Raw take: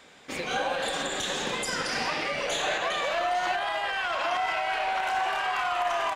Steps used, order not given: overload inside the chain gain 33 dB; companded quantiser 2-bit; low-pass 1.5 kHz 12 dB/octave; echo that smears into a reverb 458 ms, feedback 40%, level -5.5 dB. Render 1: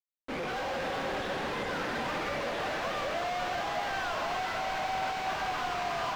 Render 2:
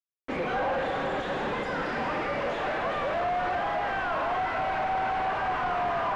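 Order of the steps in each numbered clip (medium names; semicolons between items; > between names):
companded quantiser > low-pass > overload inside the chain > echo that smears into a reverb; overload inside the chain > echo that smears into a reverb > companded quantiser > low-pass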